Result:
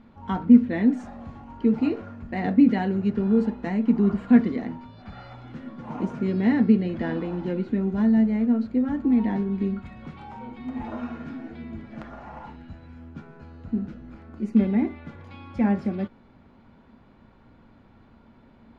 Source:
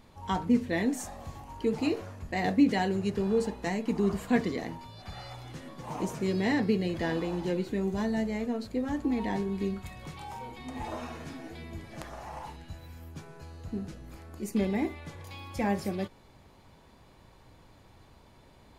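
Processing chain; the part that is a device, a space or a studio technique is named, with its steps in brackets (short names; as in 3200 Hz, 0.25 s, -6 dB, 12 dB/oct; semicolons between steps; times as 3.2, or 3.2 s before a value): inside a cardboard box (LPF 2600 Hz 12 dB/oct; small resonant body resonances 230/1400 Hz, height 13 dB, ringing for 60 ms)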